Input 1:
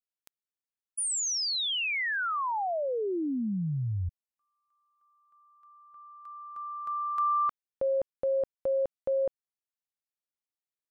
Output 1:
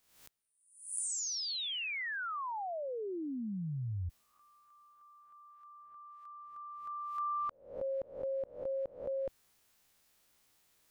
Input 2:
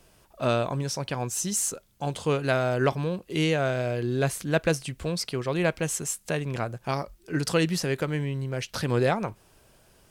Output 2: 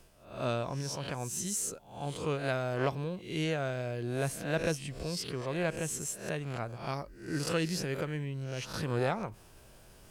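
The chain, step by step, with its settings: spectral swells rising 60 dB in 0.50 s; low shelf 120 Hz +4.5 dB; reverse; upward compressor, threshold -37 dBFS; reverse; gain -9 dB

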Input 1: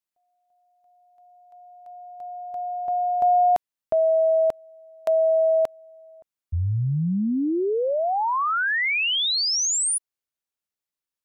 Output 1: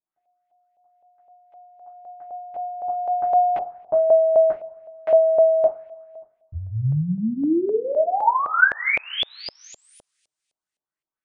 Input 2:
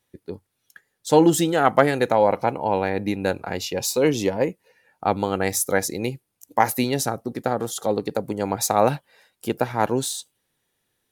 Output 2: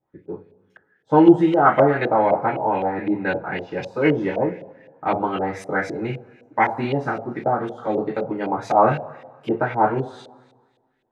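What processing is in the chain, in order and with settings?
two-slope reverb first 0.24 s, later 1.5 s, from -22 dB, DRR -6 dB; LFO low-pass saw up 3.9 Hz 600–2800 Hz; gain -7.5 dB

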